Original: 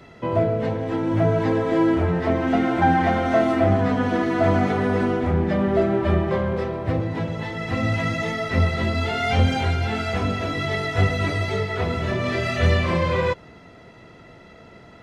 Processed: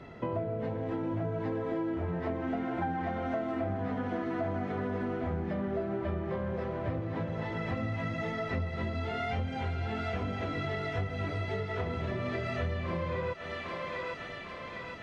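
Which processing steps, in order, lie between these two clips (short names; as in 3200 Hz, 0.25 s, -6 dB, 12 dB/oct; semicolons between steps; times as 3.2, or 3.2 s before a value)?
LPF 2000 Hz 6 dB/oct; on a send: thinning echo 0.805 s, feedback 70%, high-pass 860 Hz, level -9 dB; on the sum: compressor 6:1, threshold -30 dBFS, peak gain reduction 16 dB; gain -1 dB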